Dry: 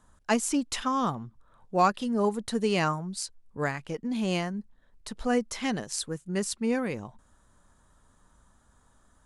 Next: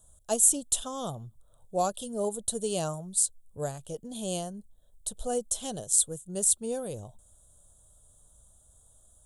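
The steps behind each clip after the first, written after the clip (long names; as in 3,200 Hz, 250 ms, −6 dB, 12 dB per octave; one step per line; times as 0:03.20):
drawn EQ curve 110 Hz 0 dB, 250 Hz −13 dB, 630 Hz 0 dB, 960 Hz −14 dB, 1,500 Hz −16 dB, 2,100 Hz −29 dB, 3,400 Hz +1 dB, 4,900 Hz −9 dB, 8,100 Hz +12 dB
level +1.5 dB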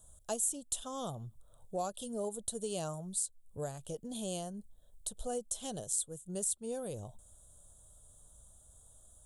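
downward compressor 2 to 1, threshold −40 dBFS, peak gain reduction 13 dB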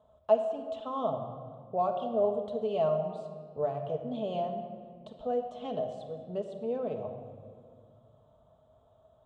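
loudspeaker in its box 140–2,600 Hz, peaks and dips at 190 Hz −8 dB, 330 Hz −5 dB, 640 Hz +9 dB, 1,100 Hz +4 dB, 1,600 Hz −10 dB
convolution reverb RT60 1.9 s, pre-delay 5 ms, DRR 3 dB
level +4.5 dB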